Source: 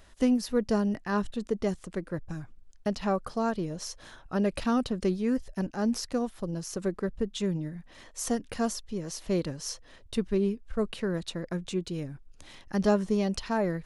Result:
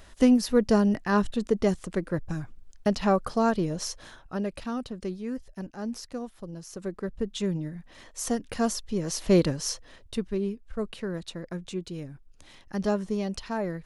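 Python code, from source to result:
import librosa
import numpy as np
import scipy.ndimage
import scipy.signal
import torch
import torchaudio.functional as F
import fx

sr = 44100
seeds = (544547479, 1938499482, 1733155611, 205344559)

y = fx.gain(x, sr, db=fx.line((3.85, 5.0), (4.59, -6.0), (6.67, -6.0), (7.32, 1.0), (8.39, 1.0), (9.41, 8.5), (10.3, -2.5)))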